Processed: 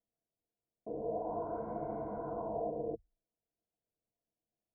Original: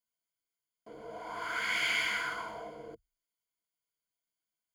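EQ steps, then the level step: steep low-pass 740 Hz 36 dB/octave; +9.0 dB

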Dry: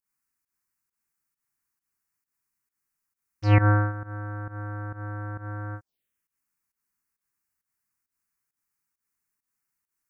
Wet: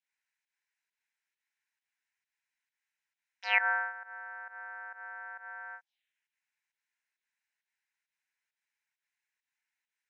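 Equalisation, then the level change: high-pass 910 Hz 24 dB/octave; resonant low-pass 4.2 kHz, resonance Q 15; static phaser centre 1.2 kHz, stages 6; +3.0 dB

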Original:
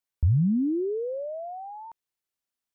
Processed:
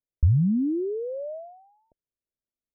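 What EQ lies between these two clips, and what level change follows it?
elliptic low-pass 630 Hz, stop band 40 dB; bass shelf 65 Hz +9.5 dB; 0.0 dB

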